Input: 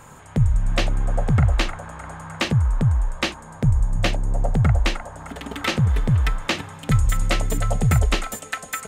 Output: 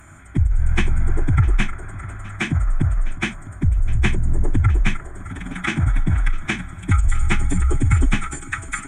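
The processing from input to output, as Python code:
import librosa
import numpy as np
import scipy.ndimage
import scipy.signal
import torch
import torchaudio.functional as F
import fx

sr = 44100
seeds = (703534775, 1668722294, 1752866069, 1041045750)

p1 = fx.fixed_phaser(x, sr, hz=1900.0, stages=4)
p2 = fx.pitch_keep_formants(p1, sr, semitones=-8.0)
p3 = p2 + fx.echo_feedback(p2, sr, ms=655, feedback_pct=25, wet_db=-19.5, dry=0)
y = F.gain(torch.from_numpy(p3), 4.5).numpy()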